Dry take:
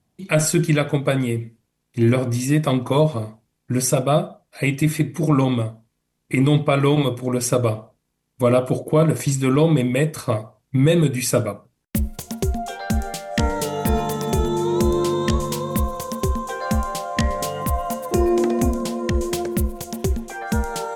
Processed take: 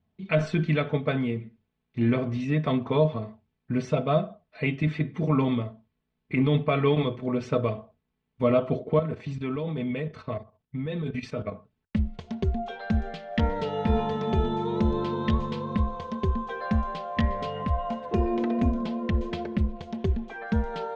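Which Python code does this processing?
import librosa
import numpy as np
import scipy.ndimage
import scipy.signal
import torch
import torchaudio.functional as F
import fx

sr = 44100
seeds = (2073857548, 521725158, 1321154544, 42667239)

y = fx.level_steps(x, sr, step_db=12, at=(8.99, 11.52))
y = scipy.signal.sosfilt(scipy.signal.butter(4, 3600.0, 'lowpass', fs=sr, output='sos'), y)
y = fx.peak_eq(y, sr, hz=92.0, db=13.0, octaves=0.48)
y = y + 0.55 * np.pad(y, (int(4.6 * sr / 1000.0), 0))[:len(y)]
y = F.gain(torch.from_numpy(y), -7.0).numpy()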